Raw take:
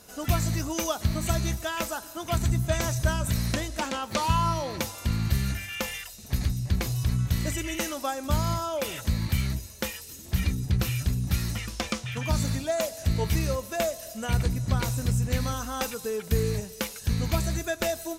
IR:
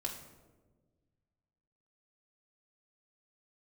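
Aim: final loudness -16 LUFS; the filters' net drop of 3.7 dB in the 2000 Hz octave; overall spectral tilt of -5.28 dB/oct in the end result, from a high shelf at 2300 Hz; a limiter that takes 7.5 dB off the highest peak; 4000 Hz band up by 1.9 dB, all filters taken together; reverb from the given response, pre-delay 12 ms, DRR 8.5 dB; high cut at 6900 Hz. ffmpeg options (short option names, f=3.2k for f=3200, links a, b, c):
-filter_complex "[0:a]lowpass=6.9k,equalizer=f=2k:t=o:g=-5,highshelf=f=2.3k:g=-4,equalizer=f=4k:t=o:g=8,alimiter=limit=-19dB:level=0:latency=1,asplit=2[a][b];[1:a]atrim=start_sample=2205,adelay=12[c];[b][c]afir=irnorm=-1:irlink=0,volume=-9dB[d];[a][d]amix=inputs=2:normalize=0,volume=14dB"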